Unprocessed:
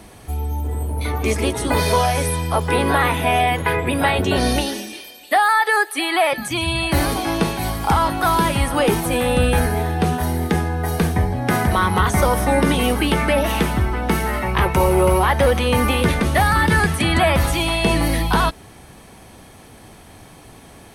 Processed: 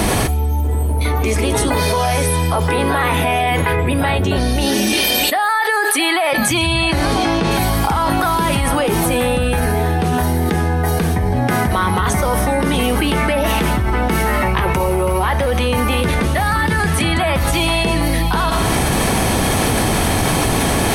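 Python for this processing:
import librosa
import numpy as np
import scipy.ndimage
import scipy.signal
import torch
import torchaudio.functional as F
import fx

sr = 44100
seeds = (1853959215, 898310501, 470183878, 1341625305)

y = fx.low_shelf(x, sr, hz=160.0, db=8.5, at=(3.71, 5.56))
y = fx.lowpass(y, sr, hz=fx.line((6.59, 11000.0), (7.5, 6000.0)), slope=12, at=(6.59, 7.5), fade=0.02)
y = fx.rev_schroeder(y, sr, rt60_s=0.65, comb_ms=28, drr_db=19.0)
y = fx.env_flatten(y, sr, amount_pct=100)
y = F.gain(torch.from_numpy(y), -3.5).numpy()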